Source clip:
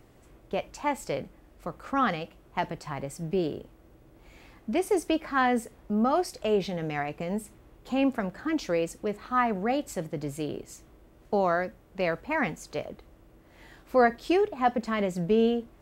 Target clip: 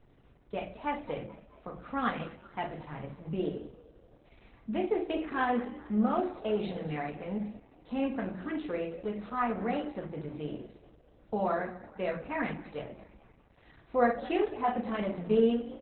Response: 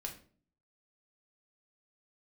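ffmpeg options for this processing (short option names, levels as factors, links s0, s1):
-filter_complex "[0:a]asplit=6[s0][s1][s2][s3][s4][s5];[s1]adelay=216,afreqshift=51,volume=0.126[s6];[s2]adelay=432,afreqshift=102,volume=0.0676[s7];[s3]adelay=648,afreqshift=153,volume=0.0367[s8];[s4]adelay=864,afreqshift=204,volume=0.0197[s9];[s5]adelay=1080,afreqshift=255,volume=0.0107[s10];[s0][s6][s7][s8][s9][s10]amix=inputs=6:normalize=0[s11];[1:a]atrim=start_sample=2205,afade=t=out:st=0.29:d=0.01,atrim=end_sample=13230[s12];[s11][s12]afir=irnorm=-1:irlink=0,volume=0.708" -ar 48000 -c:a libopus -b:a 8k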